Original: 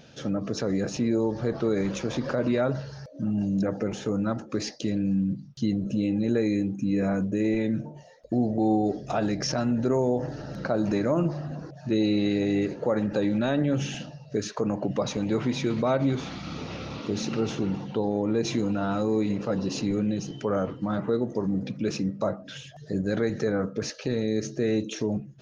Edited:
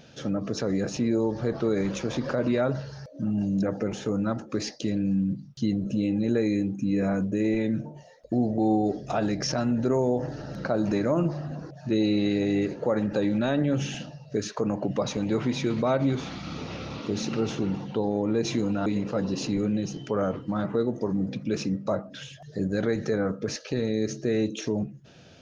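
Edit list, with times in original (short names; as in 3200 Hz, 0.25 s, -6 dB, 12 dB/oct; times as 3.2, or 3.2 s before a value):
18.86–19.2 cut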